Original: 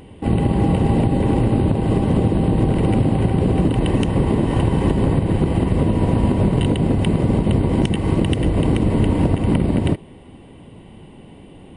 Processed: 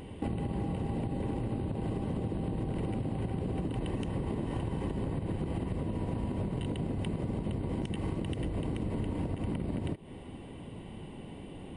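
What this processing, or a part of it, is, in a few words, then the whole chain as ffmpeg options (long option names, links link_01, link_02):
serial compression, leveller first: -af "acompressor=threshold=-22dB:ratio=2,acompressor=threshold=-28dB:ratio=5,volume=-3dB"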